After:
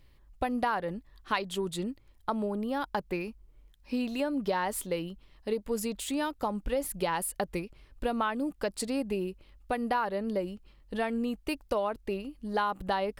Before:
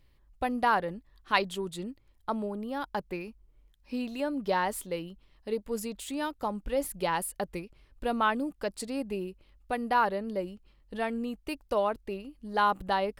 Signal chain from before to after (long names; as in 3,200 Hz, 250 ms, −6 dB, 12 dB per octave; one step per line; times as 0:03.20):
downward compressor 6 to 1, threshold −30 dBFS, peak gain reduction 11 dB
level +4 dB